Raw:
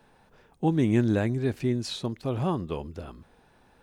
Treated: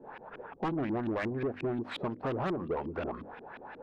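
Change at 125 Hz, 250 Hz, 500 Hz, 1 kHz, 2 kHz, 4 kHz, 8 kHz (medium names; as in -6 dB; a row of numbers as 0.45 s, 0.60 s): -11.5 dB, -8.0 dB, -3.5 dB, -0.5 dB, -1.5 dB, -9.0 dB, under -15 dB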